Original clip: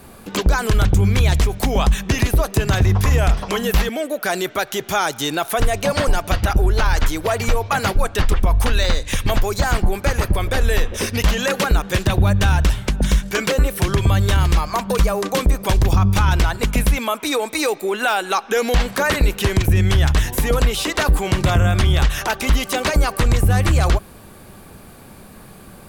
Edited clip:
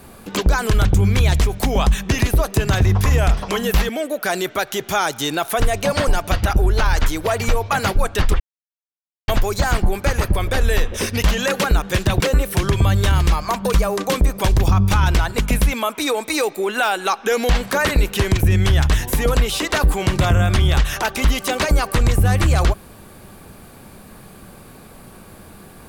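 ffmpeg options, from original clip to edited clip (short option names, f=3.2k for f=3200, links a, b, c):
-filter_complex "[0:a]asplit=4[a][b][c][d];[a]atrim=end=8.4,asetpts=PTS-STARTPTS,afade=t=out:st=8.396:d=0.004:c=hsin[e];[b]atrim=start=8.4:end=9.28,asetpts=PTS-STARTPTS,volume=0[f];[c]atrim=start=9.28:end=12.202,asetpts=PTS-STARTPTS,afade=t=in:d=0.004:c=hsin[g];[d]atrim=start=13.448[h];[e][f][g]concat=n=3:v=0:a=1[i];[i][h]acrossfade=d=0.004:c1=hsin:c2=hsin"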